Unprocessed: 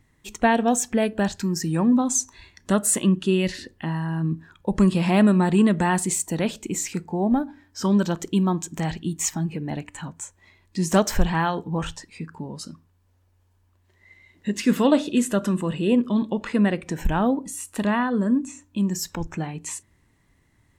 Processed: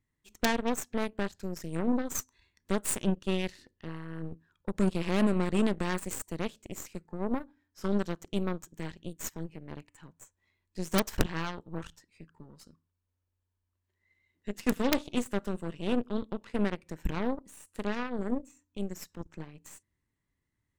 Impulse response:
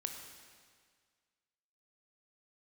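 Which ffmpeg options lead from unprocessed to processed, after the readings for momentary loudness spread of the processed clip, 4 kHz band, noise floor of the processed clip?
16 LU, -7.0 dB, -83 dBFS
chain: -af "aeval=exprs='0.668*(cos(1*acos(clip(val(0)/0.668,-1,1)))-cos(1*PI/2))+0.211*(cos(2*acos(clip(val(0)/0.668,-1,1)))-cos(2*PI/2))+0.15*(cos(3*acos(clip(val(0)/0.668,-1,1)))-cos(3*PI/2))+0.0211*(cos(7*acos(clip(val(0)/0.668,-1,1)))-cos(7*PI/2))+0.0422*(cos(8*acos(clip(val(0)/0.668,-1,1)))-cos(8*PI/2))':c=same,aeval=exprs='(mod(4.22*val(0)+1,2)-1)/4.22':c=same,equalizer=f=740:w=2.9:g=-4.5"

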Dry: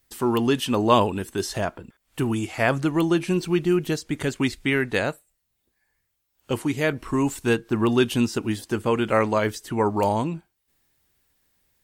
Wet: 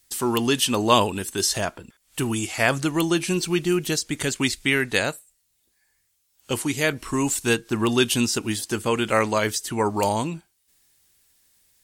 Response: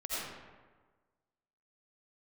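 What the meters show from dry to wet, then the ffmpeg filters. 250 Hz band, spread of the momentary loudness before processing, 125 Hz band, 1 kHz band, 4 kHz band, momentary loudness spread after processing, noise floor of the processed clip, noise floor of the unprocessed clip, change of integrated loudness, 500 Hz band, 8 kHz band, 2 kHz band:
-1.5 dB, 8 LU, -1.5 dB, 0.0 dB, +6.5 dB, 7 LU, -70 dBFS, -75 dBFS, +0.5 dB, -1.0 dB, +11.0 dB, +3.0 dB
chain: -af "equalizer=f=8400:t=o:w=2.8:g=13,volume=0.841"

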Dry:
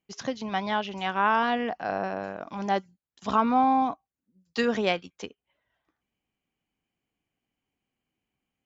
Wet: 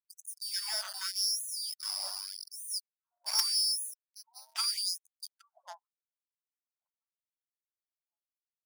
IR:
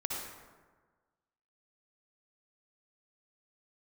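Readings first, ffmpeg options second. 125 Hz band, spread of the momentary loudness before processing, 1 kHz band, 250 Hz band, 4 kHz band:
under -40 dB, 14 LU, -24.0 dB, under -40 dB, +7.0 dB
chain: -filter_complex "[0:a]afftfilt=real='real(if(lt(b,272),68*(eq(floor(b/68),0)*1+eq(floor(b/68),1)*2+eq(floor(b/68),2)*3+eq(floor(b/68),3)*0)+mod(b,68),b),0)':imag='imag(if(lt(b,272),68*(eq(floor(b/68),0)*1+eq(floor(b/68),1)*2+eq(floor(b/68),2)*3+eq(floor(b/68),3)*0)+mod(b,68),b),0)':win_size=2048:overlap=0.75,equalizer=f=320:t=o:w=0.97:g=12.5,bandreject=f=1200:w=28,asplit=2[s0][s1];[s1]adelay=809,lowpass=f=1500:p=1,volume=0.316,asplit=2[s2][s3];[s3]adelay=809,lowpass=f=1500:p=1,volume=0.32,asplit=2[s4][s5];[s5]adelay=809,lowpass=f=1500:p=1,volume=0.32,asplit=2[s6][s7];[s7]adelay=809,lowpass=f=1500:p=1,volume=0.32[s8];[s0][s2][s4][s6][s8]amix=inputs=5:normalize=0,acrossover=split=260|1000[s9][s10][s11];[s11]acrusher=bits=3:dc=4:mix=0:aa=0.000001[s12];[s9][s10][s12]amix=inputs=3:normalize=0,adynamicequalizer=threshold=0.0178:dfrequency=5000:dqfactor=2.6:tfrequency=5000:tqfactor=2.6:attack=5:release=100:ratio=0.375:range=1.5:mode=cutabove:tftype=bell,afftdn=nr=23:nf=-49,afftfilt=real='re*gte(b*sr/1024,550*pow(6000/550,0.5+0.5*sin(2*PI*0.83*pts/sr)))':imag='im*gte(b*sr/1024,550*pow(6000/550,0.5+0.5*sin(2*PI*0.83*pts/sr)))':win_size=1024:overlap=0.75,volume=0.841"

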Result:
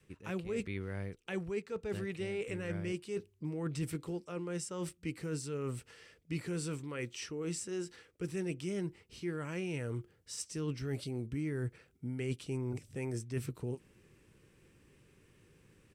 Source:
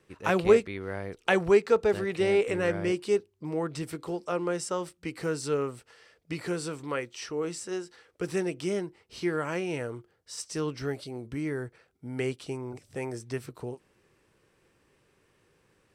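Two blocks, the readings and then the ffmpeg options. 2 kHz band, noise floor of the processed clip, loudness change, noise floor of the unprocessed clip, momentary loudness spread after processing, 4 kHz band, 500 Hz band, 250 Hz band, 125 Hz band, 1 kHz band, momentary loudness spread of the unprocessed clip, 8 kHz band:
-11.0 dB, -69 dBFS, -9.5 dB, -69 dBFS, 5 LU, -8.0 dB, -12.5 dB, -6.0 dB, -0.5 dB, -15.5 dB, 16 LU, -4.0 dB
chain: -af "adynamicequalizer=threshold=0.01:dfrequency=300:dqfactor=1.1:tfrequency=300:tqfactor=1.1:attack=5:release=100:ratio=0.375:range=2.5:mode=cutabove:tftype=bell,areverse,acompressor=threshold=0.0126:ratio=5,areverse,firequalizer=gain_entry='entry(160,0);entry(690,-13);entry(2500,-5);entry(4300,-9);entry(7000,-5)':delay=0.05:min_phase=1,volume=2.24"

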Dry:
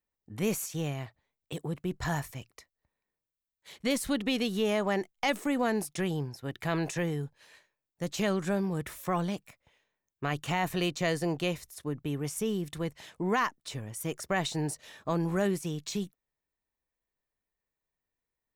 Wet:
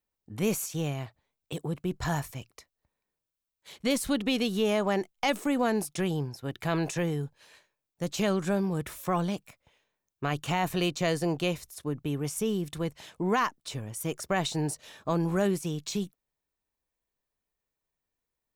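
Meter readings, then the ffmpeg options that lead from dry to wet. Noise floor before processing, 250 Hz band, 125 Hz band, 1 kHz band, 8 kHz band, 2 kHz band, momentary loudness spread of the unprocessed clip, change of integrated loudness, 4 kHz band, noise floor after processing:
under -85 dBFS, +2.0 dB, +2.0 dB, +2.0 dB, +2.0 dB, 0.0 dB, 9 LU, +2.0 dB, +2.0 dB, under -85 dBFS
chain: -af "equalizer=f=1900:w=4.7:g=-4.5,volume=1.26"

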